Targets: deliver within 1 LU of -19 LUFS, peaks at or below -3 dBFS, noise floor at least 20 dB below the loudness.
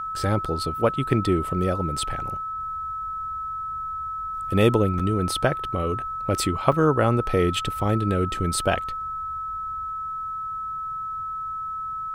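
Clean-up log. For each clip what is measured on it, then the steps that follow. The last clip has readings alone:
dropouts 3; longest dropout 5.0 ms; steady tone 1300 Hz; tone level -28 dBFS; loudness -25.0 LUFS; peak -3.5 dBFS; loudness target -19.0 LUFS
-> interpolate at 0.45/4.99/6.72, 5 ms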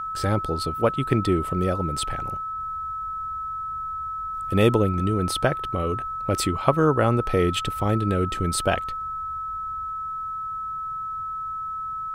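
dropouts 0; steady tone 1300 Hz; tone level -28 dBFS
-> notch 1300 Hz, Q 30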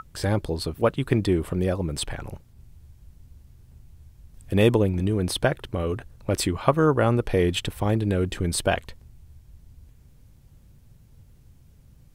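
steady tone none; loudness -24.5 LUFS; peak -4.0 dBFS; loudness target -19.0 LUFS
-> gain +5.5 dB; limiter -3 dBFS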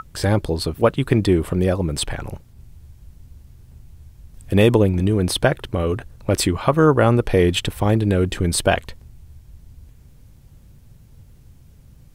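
loudness -19.0 LUFS; peak -3.0 dBFS; noise floor -49 dBFS

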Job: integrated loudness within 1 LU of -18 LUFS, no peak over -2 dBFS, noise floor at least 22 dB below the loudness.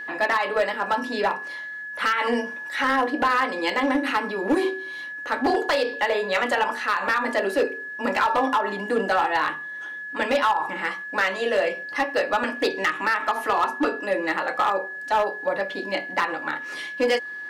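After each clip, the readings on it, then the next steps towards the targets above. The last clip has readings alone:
clipped 1.3%; flat tops at -15.0 dBFS; steady tone 1700 Hz; tone level -32 dBFS; loudness -24.0 LUFS; peak -15.0 dBFS; loudness target -18.0 LUFS
-> clip repair -15 dBFS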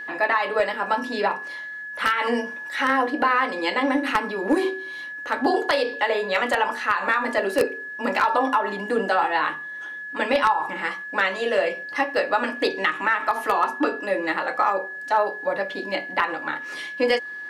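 clipped 0.0%; steady tone 1700 Hz; tone level -32 dBFS
-> notch 1700 Hz, Q 30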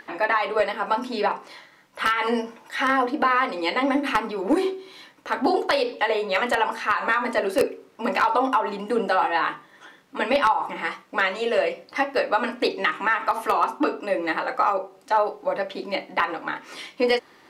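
steady tone none; loudness -24.0 LUFS; peak -6.0 dBFS; loudness target -18.0 LUFS
-> gain +6 dB; limiter -2 dBFS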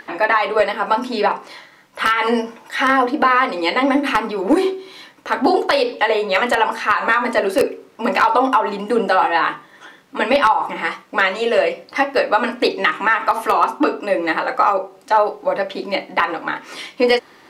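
loudness -18.0 LUFS; peak -2.0 dBFS; noise floor -48 dBFS

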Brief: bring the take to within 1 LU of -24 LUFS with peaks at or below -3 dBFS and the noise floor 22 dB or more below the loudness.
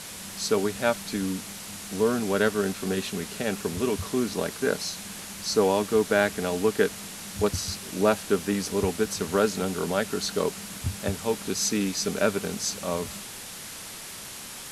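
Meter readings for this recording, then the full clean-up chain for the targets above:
noise floor -40 dBFS; noise floor target -50 dBFS; loudness -27.5 LUFS; peak -7.0 dBFS; loudness target -24.0 LUFS
-> noise print and reduce 10 dB; gain +3.5 dB

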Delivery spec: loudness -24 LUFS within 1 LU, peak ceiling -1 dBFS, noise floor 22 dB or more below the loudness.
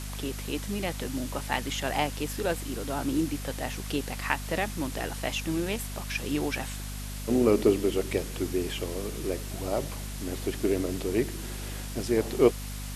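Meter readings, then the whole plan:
hum 50 Hz; harmonics up to 250 Hz; hum level -35 dBFS; noise floor -37 dBFS; noise floor target -52 dBFS; loudness -30.0 LUFS; peak -7.5 dBFS; loudness target -24.0 LUFS
-> notches 50/100/150/200/250 Hz; denoiser 15 dB, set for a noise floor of -37 dBFS; gain +6 dB

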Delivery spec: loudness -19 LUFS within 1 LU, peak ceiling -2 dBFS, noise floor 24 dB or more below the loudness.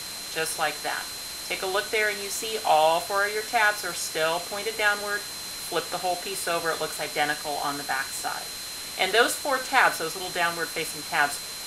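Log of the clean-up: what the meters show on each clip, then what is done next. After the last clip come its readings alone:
steady tone 4100 Hz; tone level -38 dBFS; noise floor -36 dBFS; noise floor target -50 dBFS; loudness -26.0 LUFS; peak -4.0 dBFS; loudness target -19.0 LUFS
-> notch 4100 Hz, Q 30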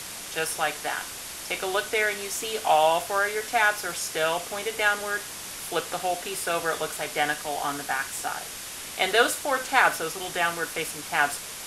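steady tone none; noise floor -38 dBFS; noise floor target -50 dBFS
-> denoiser 12 dB, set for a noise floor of -38 dBFS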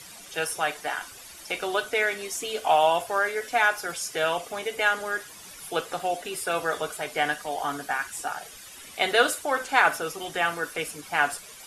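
noise floor -45 dBFS; noise floor target -51 dBFS
-> denoiser 6 dB, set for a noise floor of -45 dBFS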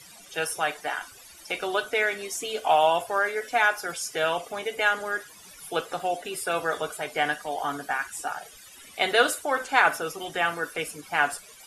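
noise floor -49 dBFS; noise floor target -51 dBFS
-> denoiser 6 dB, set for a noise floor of -49 dBFS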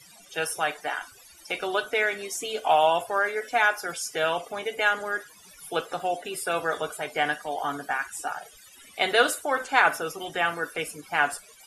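noise floor -52 dBFS; loudness -26.5 LUFS; peak -4.5 dBFS; loudness target -19.0 LUFS
-> gain +7.5 dB; limiter -2 dBFS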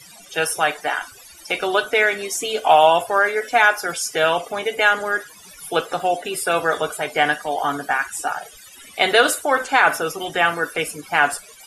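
loudness -19.5 LUFS; peak -2.0 dBFS; noise floor -44 dBFS

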